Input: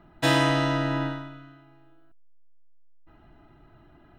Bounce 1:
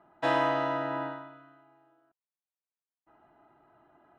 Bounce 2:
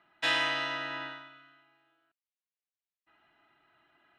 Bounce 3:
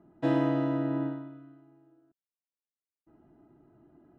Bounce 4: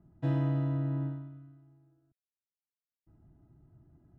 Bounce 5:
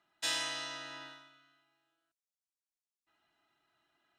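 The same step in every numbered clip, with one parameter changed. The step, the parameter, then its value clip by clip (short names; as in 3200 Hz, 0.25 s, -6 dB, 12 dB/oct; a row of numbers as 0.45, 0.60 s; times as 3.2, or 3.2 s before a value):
band-pass, frequency: 830, 2500, 310, 110, 6700 Hz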